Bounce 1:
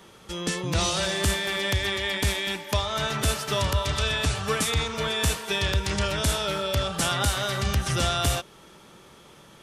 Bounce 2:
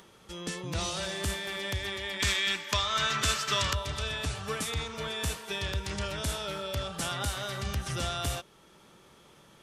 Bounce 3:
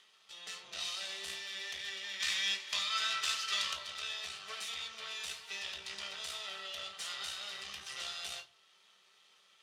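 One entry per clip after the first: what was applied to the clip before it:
gain on a spectral selection 0:02.20–0:03.74, 1,000–8,300 Hz +9 dB; upward compression, threshold −44 dBFS; level −8 dB
half-wave rectification; resonant band-pass 3,500 Hz, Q 1.1; convolution reverb RT60 0.30 s, pre-delay 3 ms, DRR 2.5 dB

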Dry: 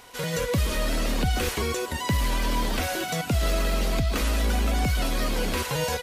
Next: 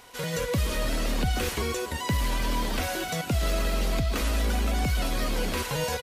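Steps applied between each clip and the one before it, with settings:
single-tap delay 286 ms −17.5 dB
level −2 dB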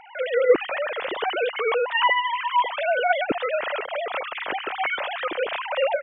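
three sine waves on the formant tracks
level +2 dB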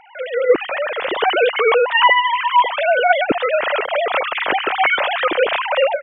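automatic gain control gain up to 10 dB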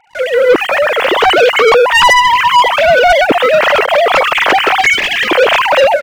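leveller curve on the samples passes 3
gain on a spectral selection 0:04.81–0:05.29, 470–1,600 Hz −15 dB

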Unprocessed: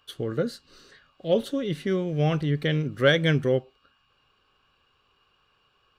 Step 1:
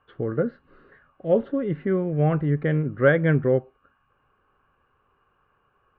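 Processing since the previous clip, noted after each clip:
low-pass filter 1,800 Hz 24 dB per octave
level +2.5 dB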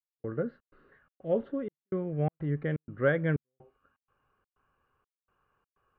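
gate pattern "..xxx.xxx.xxxx" 125 BPM −60 dB
level −8 dB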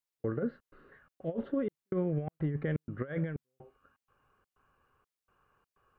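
compressor whose output falls as the input rises −31 dBFS, ratio −0.5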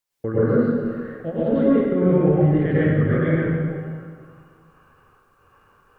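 dense smooth reverb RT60 1.9 s, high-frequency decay 0.7×, pre-delay 85 ms, DRR −9.5 dB
level +6.5 dB

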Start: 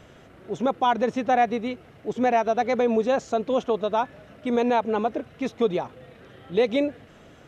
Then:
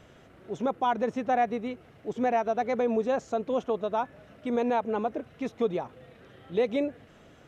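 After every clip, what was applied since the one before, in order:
dynamic equaliser 4,100 Hz, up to −5 dB, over −45 dBFS, Q 0.87
level −4.5 dB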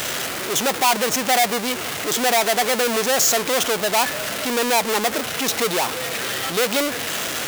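power curve on the samples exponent 0.35
spectral tilt +4 dB per octave
level +3.5 dB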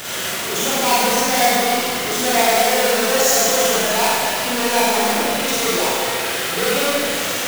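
four-comb reverb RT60 2.2 s, combs from 33 ms, DRR −8.5 dB
level −6 dB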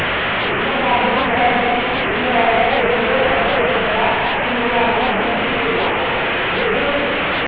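linear delta modulator 16 kbit/s, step −12.5 dBFS
wow of a warped record 78 rpm, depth 160 cents
level +1 dB

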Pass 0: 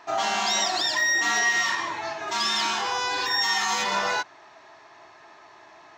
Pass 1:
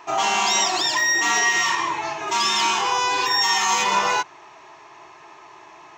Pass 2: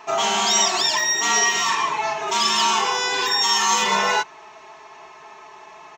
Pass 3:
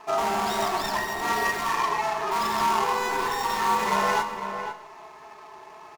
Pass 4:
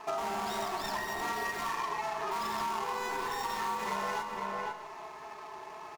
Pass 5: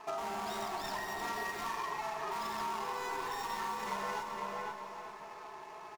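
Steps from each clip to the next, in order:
EQ curve with evenly spaced ripples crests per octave 0.72, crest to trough 7 dB; level +4 dB
comb filter 4.6 ms, depth 75%
running median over 15 samples; slap from a distant wall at 86 metres, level −8 dB; four-comb reverb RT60 0.93 s, combs from 30 ms, DRR 11 dB; level −2 dB
downward compressor 4 to 1, threshold −33 dBFS, peak gain reduction 12 dB
repeating echo 392 ms, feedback 50%, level −10 dB; level −4 dB

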